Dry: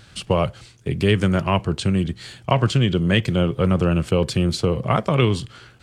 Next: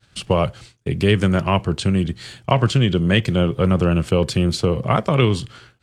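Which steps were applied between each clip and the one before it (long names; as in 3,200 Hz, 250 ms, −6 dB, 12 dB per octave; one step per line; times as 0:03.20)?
downward expander −40 dBFS
level +1.5 dB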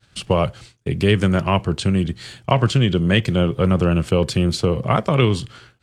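no processing that can be heard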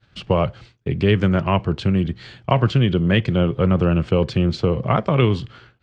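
high-frequency loss of the air 180 metres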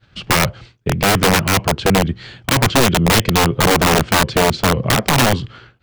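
wrap-around overflow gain 12 dB
level +4.5 dB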